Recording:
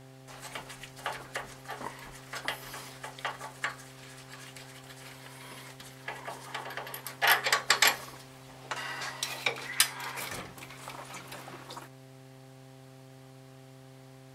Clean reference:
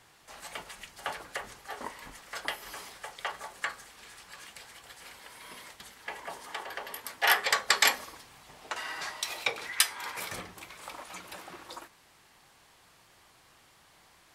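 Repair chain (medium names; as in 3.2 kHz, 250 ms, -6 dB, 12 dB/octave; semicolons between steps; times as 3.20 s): de-hum 131.8 Hz, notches 6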